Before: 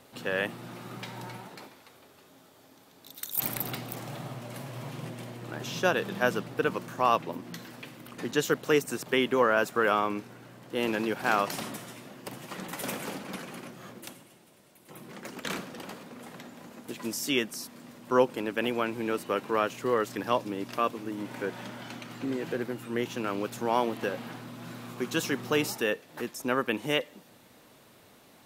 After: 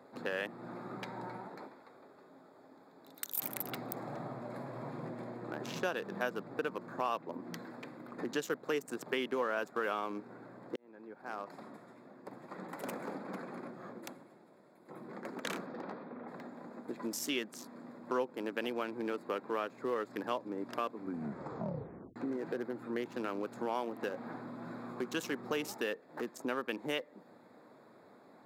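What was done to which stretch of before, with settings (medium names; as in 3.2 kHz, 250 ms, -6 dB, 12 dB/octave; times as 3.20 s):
10.76–13.83 s: fade in
15.66–16.27 s: low-pass 6.5 kHz -> 2.9 kHz 24 dB/octave
20.92 s: tape stop 1.24 s
whole clip: local Wiener filter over 15 samples; high-pass 210 Hz 12 dB/octave; compression 2.5:1, threshold -37 dBFS; trim +1 dB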